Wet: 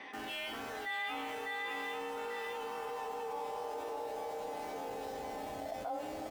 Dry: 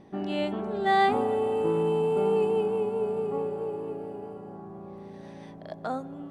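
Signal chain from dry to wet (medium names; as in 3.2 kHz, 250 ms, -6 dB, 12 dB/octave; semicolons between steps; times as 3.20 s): band-pass sweep 2.1 kHz -> 660 Hz, 1.90–3.87 s; delay 841 ms -9.5 dB; in parallel at -12 dB: Schmitt trigger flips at -51.5 dBFS; on the sum: bass shelf 460 Hz -4 dB; feedback comb 250 Hz, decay 0.52 s, harmonics all, mix 90%; delay 603 ms -5 dB; frequency shift +29 Hz; level flattener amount 70%; trim +9 dB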